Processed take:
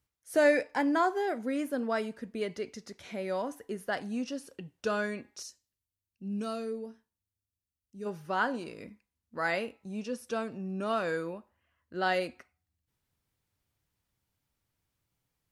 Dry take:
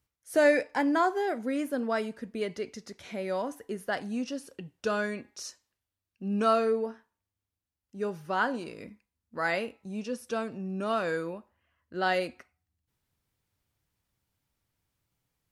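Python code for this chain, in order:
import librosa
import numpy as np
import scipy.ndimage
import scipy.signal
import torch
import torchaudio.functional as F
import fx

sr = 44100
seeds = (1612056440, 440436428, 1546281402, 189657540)

y = fx.peak_eq(x, sr, hz=1100.0, db=-14.5, octaves=3.0, at=(5.42, 8.05), fade=0.02)
y = F.gain(torch.from_numpy(y), -1.5).numpy()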